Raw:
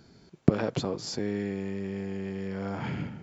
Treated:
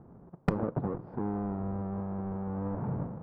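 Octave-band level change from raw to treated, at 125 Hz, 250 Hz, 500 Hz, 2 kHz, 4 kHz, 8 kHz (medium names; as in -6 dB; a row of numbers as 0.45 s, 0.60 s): -1.5 dB, -2.5 dB, -5.0 dB, -8.5 dB, under -20 dB, no reading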